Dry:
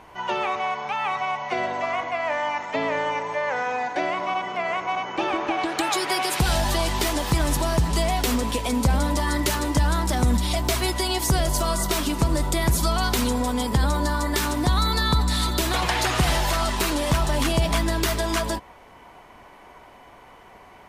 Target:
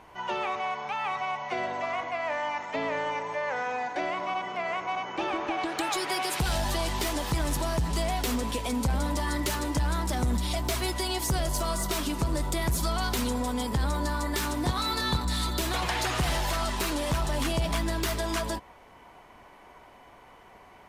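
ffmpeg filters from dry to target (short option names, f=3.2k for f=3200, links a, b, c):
-filter_complex "[0:a]asoftclip=type=tanh:threshold=-15dB,asettb=1/sr,asplit=3[a][b][c];[a]atrim=end=14.634[d];[b]atrim=start=14.63:end=15.25,asetpts=PTS-STARTPTS,afade=t=in:d=0.004:c=qsin,afade=t=out:st=0.616:d=0.004:c=qsin,asplit=2[e][f];[f]adelay=24,volume=-4dB[g];[e][g]amix=inputs=2:normalize=0,atrim=end_sample=27342[h];[c]atrim=start=15.246[i];[d][h]acrossfade=d=0.004:c1=hsin:c2=qsin[j];[j][i]acrossfade=d=0.004:c1=qsin:c2=hsin,volume=-4.5dB"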